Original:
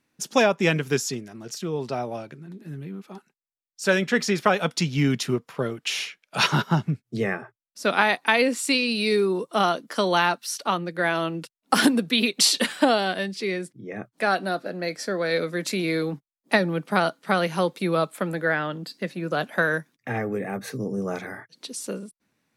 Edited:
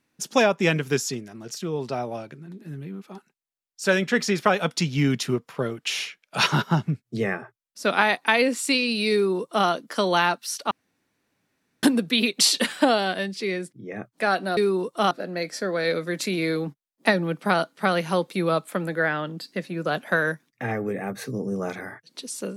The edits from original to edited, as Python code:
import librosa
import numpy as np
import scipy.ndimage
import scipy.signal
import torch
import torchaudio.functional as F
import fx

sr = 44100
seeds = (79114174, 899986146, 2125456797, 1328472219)

y = fx.edit(x, sr, fx.duplicate(start_s=9.13, length_s=0.54, to_s=14.57),
    fx.room_tone_fill(start_s=10.71, length_s=1.12), tone=tone)